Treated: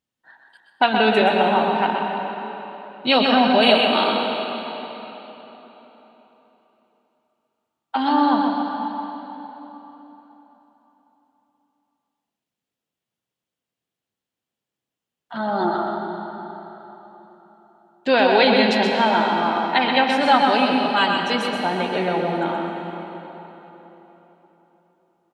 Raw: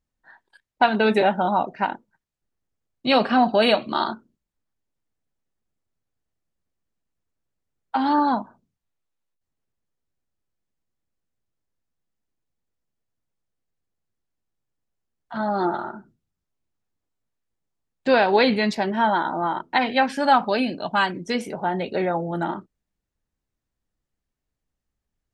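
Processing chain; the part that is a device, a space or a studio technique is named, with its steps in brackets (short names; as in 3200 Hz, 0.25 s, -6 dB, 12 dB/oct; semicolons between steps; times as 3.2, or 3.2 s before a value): PA in a hall (HPF 140 Hz 12 dB/oct; bell 3100 Hz +7 dB 0.63 oct; echo 0.126 s -6 dB; reverb RT60 3.9 s, pre-delay 0.108 s, DRR 3 dB)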